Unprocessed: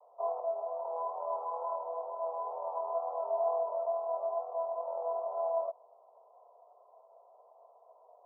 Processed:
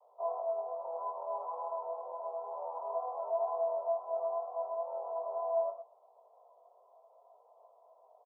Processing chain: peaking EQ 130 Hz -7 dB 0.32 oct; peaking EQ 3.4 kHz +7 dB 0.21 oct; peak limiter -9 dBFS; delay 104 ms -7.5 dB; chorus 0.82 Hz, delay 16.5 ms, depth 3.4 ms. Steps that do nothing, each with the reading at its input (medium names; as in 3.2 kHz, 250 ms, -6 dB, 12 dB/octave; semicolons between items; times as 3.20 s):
peaking EQ 130 Hz: input has nothing below 400 Hz; peaking EQ 3.4 kHz: input has nothing above 1.1 kHz; peak limiter -9 dBFS: peak at its input -20.5 dBFS